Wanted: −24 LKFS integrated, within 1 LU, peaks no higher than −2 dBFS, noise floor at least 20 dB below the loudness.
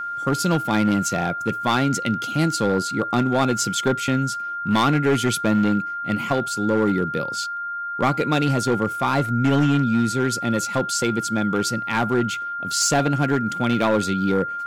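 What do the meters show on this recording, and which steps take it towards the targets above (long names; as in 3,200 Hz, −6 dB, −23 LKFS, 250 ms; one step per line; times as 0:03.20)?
share of clipped samples 1.9%; peaks flattened at −13.0 dBFS; interfering tone 1,400 Hz; level of the tone −26 dBFS; integrated loudness −21.5 LKFS; sample peak −13.0 dBFS; target loudness −24.0 LKFS
→ clipped peaks rebuilt −13 dBFS
notch filter 1,400 Hz, Q 30
level −2.5 dB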